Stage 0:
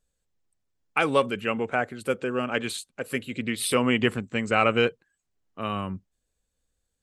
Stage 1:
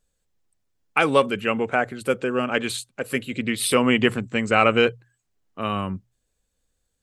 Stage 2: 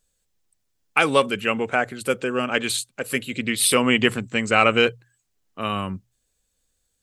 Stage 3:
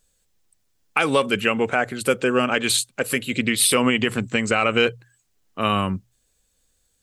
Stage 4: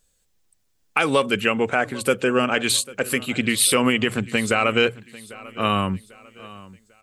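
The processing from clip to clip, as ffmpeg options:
-af "bandreject=f=60:t=h:w=6,bandreject=f=120:t=h:w=6,volume=1.58"
-af "highshelf=f=2500:g=7.5,volume=0.891"
-af "alimiter=limit=0.266:level=0:latency=1:release=173,volume=1.78"
-af "aecho=1:1:796|1592|2388:0.1|0.039|0.0152"

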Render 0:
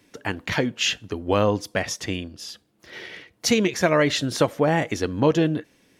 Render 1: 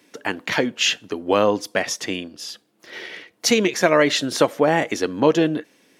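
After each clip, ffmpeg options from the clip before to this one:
-af "highpass=230,volume=1.5"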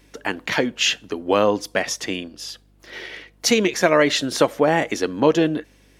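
-af "aeval=exprs='val(0)+0.00178*(sin(2*PI*50*n/s)+sin(2*PI*2*50*n/s)/2+sin(2*PI*3*50*n/s)/3+sin(2*PI*4*50*n/s)/4+sin(2*PI*5*50*n/s)/5)':c=same"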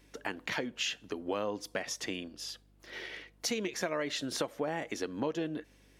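-af "acompressor=threshold=0.0562:ratio=3,volume=0.398"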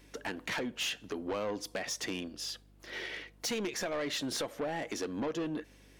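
-af "asoftclip=type=tanh:threshold=0.0224,volume=1.5"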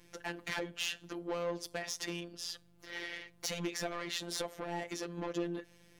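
-af "afftfilt=real='hypot(re,im)*cos(PI*b)':imag='0':win_size=1024:overlap=0.75,volume=1.12"

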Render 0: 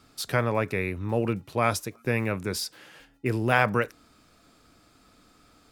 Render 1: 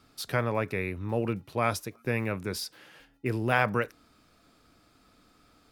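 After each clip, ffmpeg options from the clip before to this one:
-af "equalizer=f=7500:w=2.1:g=-4,volume=0.708"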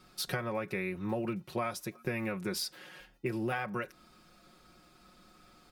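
-af "aecho=1:1:5.5:0.77,acompressor=threshold=0.0316:ratio=12"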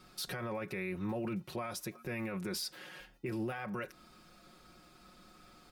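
-af "alimiter=level_in=2.11:limit=0.0631:level=0:latency=1:release=20,volume=0.473,volume=1.12"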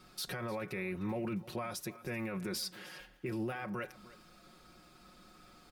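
-af "aecho=1:1:304:0.119"

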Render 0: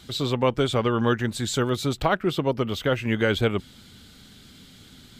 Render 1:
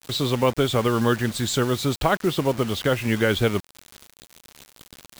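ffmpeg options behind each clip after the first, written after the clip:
-filter_complex "[0:a]asplit=2[s0][s1];[s1]acompressor=threshold=0.0251:ratio=5,volume=0.75[s2];[s0][s2]amix=inputs=2:normalize=0,acrusher=bits=5:mix=0:aa=0.000001"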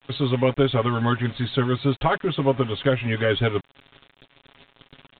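-af "aecho=1:1:7.3:0.81,aresample=8000,aresample=44100,volume=0.75"

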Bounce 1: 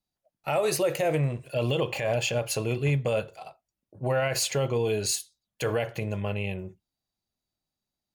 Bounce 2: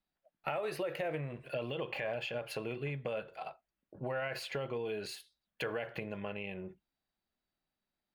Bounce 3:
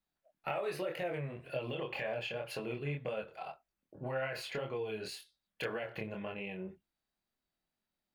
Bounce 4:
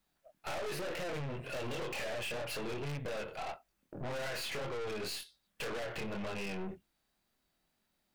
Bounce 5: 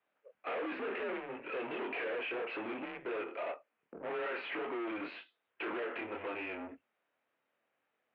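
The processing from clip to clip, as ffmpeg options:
-af "highshelf=f=5200:t=q:w=3:g=-9.5,acompressor=threshold=0.02:ratio=6,equalizer=f=100:t=o:w=0.67:g=-12,equalizer=f=1600:t=o:w=0.67:g=5,equalizer=f=4000:t=o:w=0.67:g=-11"
-af "flanger=delay=22.5:depth=5:speed=1.9,volume=1.33"
-af "aeval=exprs='(tanh(282*val(0)+0.5)-tanh(0.5))/282':c=same,volume=3.76"
-af "highpass=f=410:t=q:w=0.5412,highpass=f=410:t=q:w=1.307,lowpass=f=2900:t=q:w=0.5176,lowpass=f=2900:t=q:w=0.7071,lowpass=f=2900:t=q:w=1.932,afreqshift=-110,volume=1.33"

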